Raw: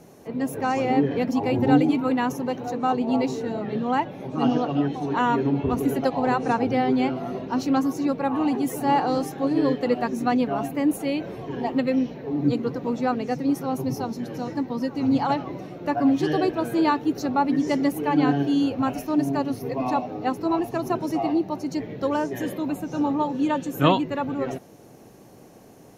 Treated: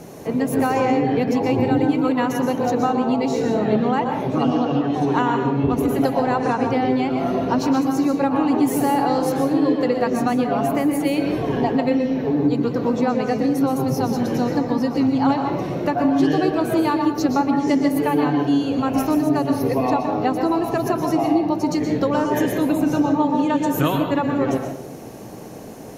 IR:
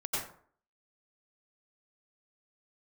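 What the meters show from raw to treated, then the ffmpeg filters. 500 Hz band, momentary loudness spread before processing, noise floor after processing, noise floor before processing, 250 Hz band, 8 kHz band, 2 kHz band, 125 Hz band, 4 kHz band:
+5.0 dB, 7 LU, -35 dBFS, -48 dBFS, +4.5 dB, +6.5 dB, +3.5 dB, +5.0 dB, +3.0 dB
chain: -filter_complex "[0:a]acompressor=threshold=0.0398:ratio=6,asplit=2[s0][s1];[1:a]atrim=start_sample=2205,asetrate=33075,aresample=44100[s2];[s1][s2]afir=irnorm=-1:irlink=0,volume=0.376[s3];[s0][s3]amix=inputs=2:normalize=0,volume=2.51"

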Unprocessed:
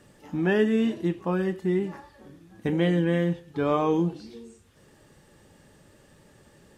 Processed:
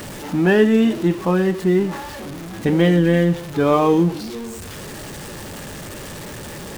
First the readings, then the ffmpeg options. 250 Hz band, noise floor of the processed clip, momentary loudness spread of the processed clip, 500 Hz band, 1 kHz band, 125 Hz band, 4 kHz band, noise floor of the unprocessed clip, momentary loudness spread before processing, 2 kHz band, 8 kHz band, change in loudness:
+8.5 dB, -33 dBFS, 18 LU, +8.5 dB, +8.5 dB, +8.5 dB, +10.0 dB, -57 dBFS, 13 LU, +8.5 dB, no reading, +8.0 dB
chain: -af "aeval=exprs='val(0)+0.5*0.0158*sgn(val(0))':c=same,volume=2.37"

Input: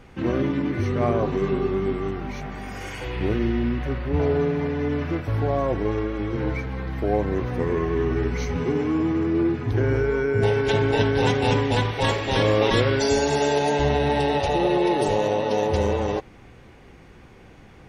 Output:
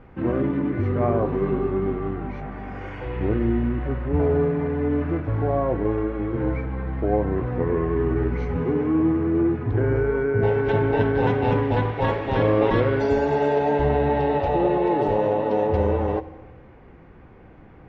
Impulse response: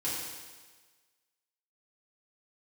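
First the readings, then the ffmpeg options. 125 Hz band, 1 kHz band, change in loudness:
+0.5 dB, +0.5 dB, +0.5 dB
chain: -filter_complex "[0:a]lowpass=1600,asplit=2[s0][s1];[1:a]atrim=start_sample=2205[s2];[s1][s2]afir=irnorm=-1:irlink=0,volume=0.119[s3];[s0][s3]amix=inputs=2:normalize=0"

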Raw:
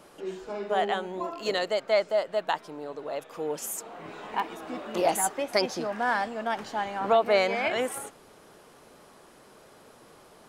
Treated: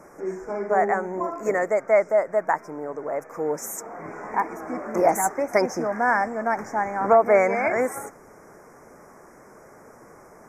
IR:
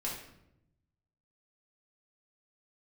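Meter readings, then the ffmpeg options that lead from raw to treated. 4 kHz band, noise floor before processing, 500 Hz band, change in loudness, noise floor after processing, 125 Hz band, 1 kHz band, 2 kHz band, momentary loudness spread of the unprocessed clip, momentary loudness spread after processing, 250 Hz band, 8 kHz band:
-13.5 dB, -54 dBFS, +5.5 dB, +5.0 dB, -49 dBFS, +5.5 dB, +5.5 dB, +4.5 dB, 13 LU, 14 LU, +5.5 dB, +0.5 dB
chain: -af "asuperstop=centerf=3500:order=12:qfactor=1.1,equalizer=f=9900:w=1.8:g=-9,volume=2" -ar 32000 -c:a libmp3lame -b:a 96k

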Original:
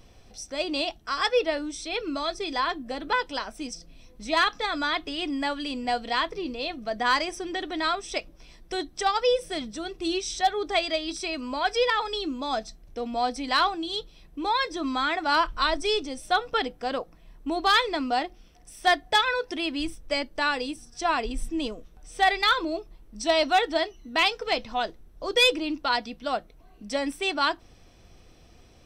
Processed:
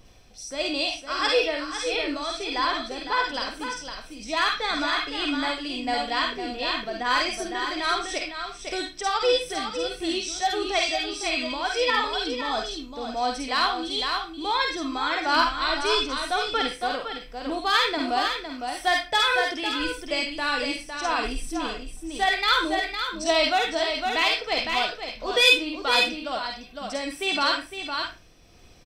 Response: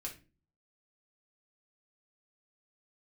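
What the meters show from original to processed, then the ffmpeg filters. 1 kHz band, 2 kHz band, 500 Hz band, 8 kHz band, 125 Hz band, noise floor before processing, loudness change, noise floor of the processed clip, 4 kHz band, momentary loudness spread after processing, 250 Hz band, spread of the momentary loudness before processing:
+0.5 dB, +3.0 dB, +0.5 dB, +3.5 dB, no reading, -54 dBFS, +1.5 dB, -45 dBFS, +3.5 dB, 10 LU, 0.0 dB, 11 LU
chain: -filter_complex "[0:a]asplit=2[s0][s1];[s1]aecho=0:1:508:0.473[s2];[s0][s2]amix=inputs=2:normalize=0,tremolo=f=1.5:d=0.32,asplit=2[s3][s4];[s4]tiltshelf=f=720:g=-9.5[s5];[1:a]atrim=start_sample=2205,adelay=49[s6];[s5][s6]afir=irnorm=-1:irlink=0,volume=0.596[s7];[s3][s7]amix=inputs=2:normalize=0"

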